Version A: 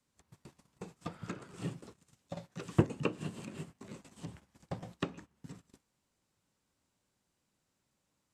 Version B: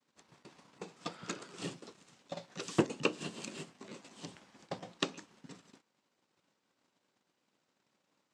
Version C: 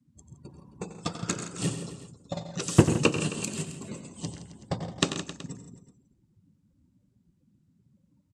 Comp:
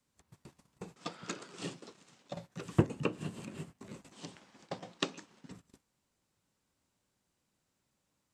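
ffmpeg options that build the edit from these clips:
-filter_complex "[1:a]asplit=2[s0][s1];[0:a]asplit=3[s2][s3][s4];[s2]atrim=end=0.962[s5];[s0]atrim=start=0.958:end=2.332[s6];[s3]atrim=start=2.328:end=4.122[s7];[s1]atrim=start=4.118:end=5.512[s8];[s4]atrim=start=5.508[s9];[s5][s6]acrossfade=d=0.004:c1=hsin:c2=hsin[s10];[s10][s7]acrossfade=d=0.004:c1=hsin:c2=hsin[s11];[s11][s8]acrossfade=d=0.004:c1=hsin:c2=hsin[s12];[s12][s9]acrossfade=d=0.004:c1=hsin:c2=hsin"

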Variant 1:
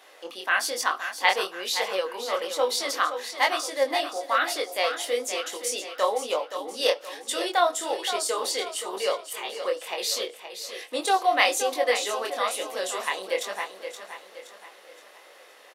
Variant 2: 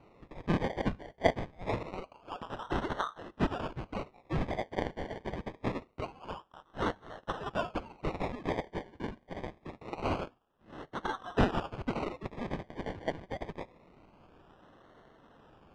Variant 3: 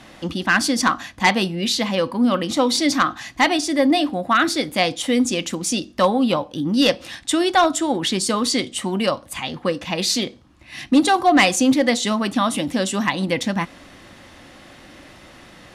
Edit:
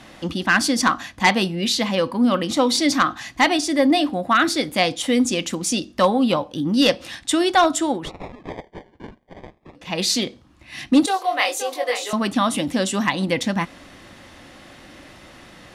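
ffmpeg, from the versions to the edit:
-filter_complex "[2:a]asplit=3[s0][s1][s2];[s0]atrim=end=8.12[s3];[1:a]atrim=start=7.88:end=9.98[s4];[s1]atrim=start=9.74:end=11.062[s5];[0:a]atrim=start=11.058:end=12.132[s6];[s2]atrim=start=12.128[s7];[s3][s4]acrossfade=d=0.24:c1=tri:c2=tri[s8];[s8][s5]acrossfade=d=0.24:c1=tri:c2=tri[s9];[s9][s6]acrossfade=d=0.004:c1=hsin:c2=hsin[s10];[s10][s7]acrossfade=d=0.004:c1=hsin:c2=hsin"

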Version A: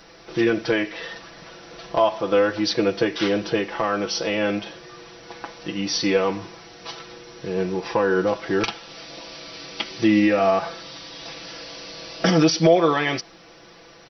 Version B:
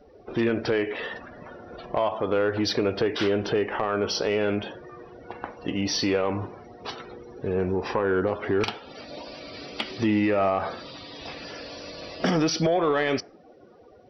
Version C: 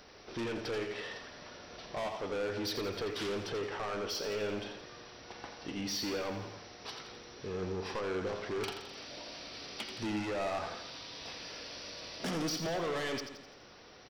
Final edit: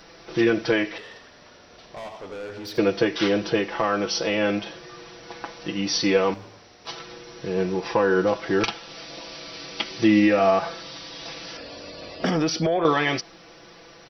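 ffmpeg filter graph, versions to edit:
-filter_complex "[2:a]asplit=2[s0][s1];[0:a]asplit=4[s2][s3][s4][s5];[s2]atrim=end=0.982[s6];[s0]atrim=start=0.978:end=2.782[s7];[s3]atrim=start=2.778:end=6.342[s8];[s1]atrim=start=6.338:end=6.872[s9];[s4]atrim=start=6.868:end=11.572[s10];[1:a]atrim=start=11.568:end=12.852[s11];[s5]atrim=start=12.848[s12];[s6][s7]acrossfade=d=0.004:c1=hsin:c2=hsin[s13];[s13][s8]acrossfade=d=0.004:c1=hsin:c2=hsin[s14];[s14][s9]acrossfade=d=0.004:c1=hsin:c2=hsin[s15];[s15][s10]acrossfade=d=0.004:c1=hsin:c2=hsin[s16];[s16][s11]acrossfade=d=0.004:c1=hsin:c2=hsin[s17];[s17][s12]acrossfade=d=0.004:c1=hsin:c2=hsin"

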